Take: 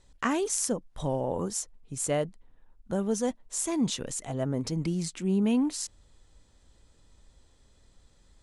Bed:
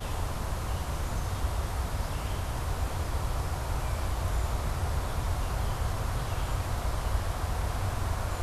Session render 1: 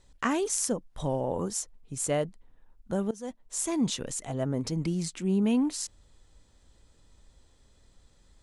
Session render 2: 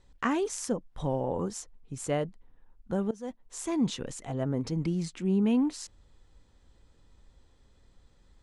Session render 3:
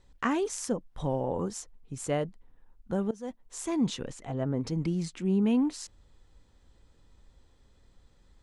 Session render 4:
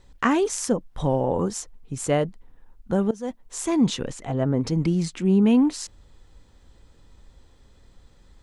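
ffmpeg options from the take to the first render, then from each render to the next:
ffmpeg -i in.wav -filter_complex "[0:a]asplit=2[link_01][link_02];[link_01]atrim=end=3.11,asetpts=PTS-STARTPTS,afade=type=out:start_time=3.106:duration=0.004:curve=hsin:silence=0.0891251[link_03];[link_02]atrim=start=3.11,asetpts=PTS-STARTPTS,afade=type=in:duration=0.51:silence=0.0891251[link_04];[link_03][link_04]concat=n=2:v=0:a=1" out.wav
ffmpeg -i in.wav -af "aemphasis=mode=reproduction:type=50kf,bandreject=frequency=620:width=12" out.wav
ffmpeg -i in.wav -filter_complex "[0:a]asettb=1/sr,asplit=3[link_01][link_02][link_03];[link_01]atrim=end=4.074[link_04];[link_02]atrim=start=4.07:end=4.63,asetpts=PTS-STARTPTS,afade=type=in:duration=0.004:curve=qsin,afade=type=out:start_time=0.556:duration=0.004:curve=qsin,highshelf=frequency=5800:gain=-10[link_05];[link_03]atrim=start=4.626[link_06];[link_04][link_05]acrossfade=duration=0.004:curve1=hsin:curve2=qsin[link_07];[link_07][link_06]acrossfade=duration=0.004:curve1=qsin:curve2=hsin" out.wav
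ffmpeg -i in.wav -af "volume=7.5dB" out.wav

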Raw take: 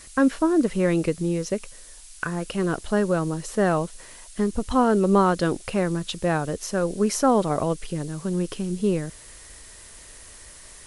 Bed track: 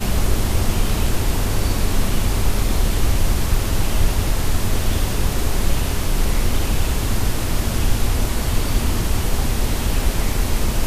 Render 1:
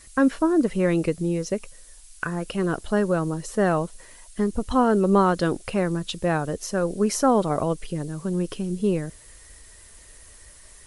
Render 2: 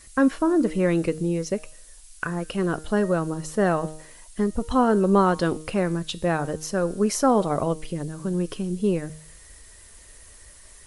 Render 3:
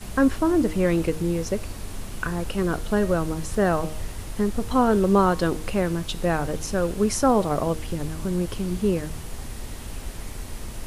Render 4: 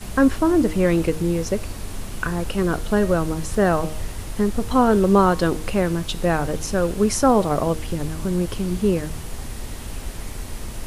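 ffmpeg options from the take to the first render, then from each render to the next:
ffmpeg -i in.wav -af "afftdn=noise_reduction=6:noise_floor=-46" out.wav
ffmpeg -i in.wav -af "bandreject=frequency=155.8:width_type=h:width=4,bandreject=frequency=311.6:width_type=h:width=4,bandreject=frequency=467.4:width_type=h:width=4,bandreject=frequency=623.2:width_type=h:width=4,bandreject=frequency=779:width_type=h:width=4,bandreject=frequency=934.8:width_type=h:width=4,bandreject=frequency=1090.6:width_type=h:width=4,bandreject=frequency=1246.4:width_type=h:width=4,bandreject=frequency=1402.2:width_type=h:width=4,bandreject=frequency=1558:width_type=h:width=4,bandreject=frequency=1713.8:width_type=h:width=4,bandreject=frequency=1869.6:width_type=h:width=4,bandreject=frequency=2025.4:width_type=h:width=4,bandreject=frequency=2181.2:width_type=h:width=4,bandreject=frequency=2337:width_type=h:width=4,bandreject=frequency=2492.8:width_type=h:width=4,bandreject=frequency=2648.6:width_type=h:width=4,bandreject=frequency=2804.4:width_type=h:width=4,bandreject=frequency=2960.2:width_type=h:width=4,bandreject=frequency=3116:width_type=h:width=4,bandreject=frequency=3271.8:width_type=h:width=4,bandreject=frequency=3427.6:width_type=h:width=4,bandreject=frequency=3583.4:width_type=h:width=4,bandreject=frequency=3739.2:width_type=h:width=4,bandreject=frequency=3895:width_type=h:width=4,bandreject=frequency=4050.8:width_type=h:width=4,bandreject=frequency=4206.6:width_type=h:width=4,bandreject=frequency=4362.4:width_type=h:width=4,bandreject=frequency=4518.2:width_type=h:width=4,bandreject=frequency=4674:width_type=h:width=4,bandreject=frequency=4829.8:width_type=h:width=4,bandreject=frequency=4985.6:width_type=h:width=4,bandreject=frequency=5141.4:width_type=h:width=4,bandreject=frequency=5297.2:width_type=h:width=4,bandreject=frequency=5453:width_type=h:width=4" out.wav
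ffmpeg -i in.wav -i bed.wav -filter_complex "[1:a]volume=-15.5dB[link_01];[0:a][link_01]amix=inputs=2:normalize=0" out.wav
ffmpeg -i in.wav -af "volume=3dB" out.wav

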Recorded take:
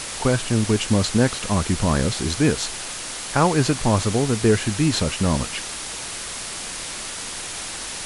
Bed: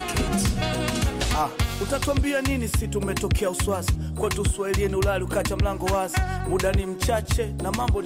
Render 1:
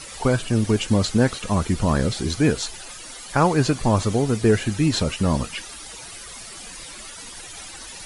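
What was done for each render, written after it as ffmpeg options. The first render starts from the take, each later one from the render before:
ffmpeg -i in.wav -af "afftdn=noise_reduction=13:noise_floor=-32" out.wav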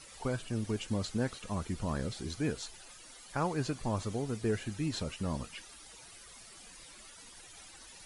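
ffmpeg -i in.wav -af "volume=-14.5dB" out.wav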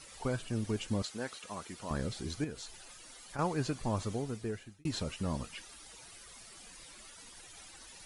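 ffmpeg -i in.wav -filter_complex "[0:a]asettb=1/sr,asplit=3[link_01][link_02][link_03];[link_01]atrim=end=1.024[link_04];[link_02]atrim=start=1.02:end=1.91,asetpts=PTS-STARTPTS,afade=type=in:duration=0.004:curve=qsin,afade=type=out:start_time=0.886:duration=0.004:curve=qsin,highpass=frequency=640:poles=1[link_05];[link_03]atrim=start=1.906[link_06];[link_04][link_05]acrossfade=duration=0.004:curve1=hsin:curve2=qsin[link_07];[link_07][link_06]acrossfade=duration=0.004:curve1=qsin:curve2=hsin,asettb=1/sr,asplit=3[link_08][link_09][link_10];[link_08]atrim=end=2.444[link_11];[link_09]atrim=start=2.44:end=3.39,asetpts=PTS-STARTPTS,afade=type=in:duration=0.004:curve=qsin,afade=type=out:start_time=0.946:duration=0.004:curve=qsin,acompressor=threshold=-43dB:ratio=2:attack=3.2:release=140:knee=1:detection=peak[link_12];[link_10]atrim=start=3.386[link_13];[link_11][link_12]acrossfade=duration=0.004:curve1=hsin:curve2=qsin[link_14];[link_14][link_13]acrossfade=duration=0.004:curve1=qsin:curve2=hsin,asplit=2[link_15][link_16];[link_15]atrim=end=4.85,asetpts=PTS-STARTPTS,afade=type=out:start_time=4.11:duration=0.74[link_17];[link_16]atrim=start=4.85,asetpts=PTS-STARTPTS,afade=type=in:duration=0.004:curve=hsin[link_18];[link_17][link_18]concat=n=2:v=0:a=1" out.wav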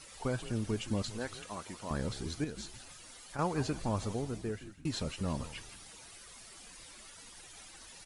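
ffmpeg -i in.wav -filter_complex "[0:a]asplit=5[link_01][link_02][link_03][link_04][link_05];[link_02]adelay=166,afreqshift=-96,volume=-13.5dB[link_06];[link_03]adelay=332,afreqshift=-192,volume=-22.1dB[link_07];[link_04]adelay=498,afreqshift=-288,volume=-30.8dB[link_08];[link_05]adelay=664,afreqshift=-384,volume=-39.4dB[link_09];[link_01][link_06][link_07][link_08][link_09]amix=inputs=5:normalize=0" out.wav

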